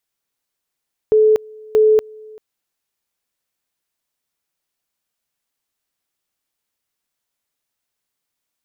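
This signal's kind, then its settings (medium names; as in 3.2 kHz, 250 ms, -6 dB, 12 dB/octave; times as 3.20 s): two-level tone 432 Hz -8.5 dBFS, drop 26.5 dB, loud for 0.24 s, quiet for 0.39 s, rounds 2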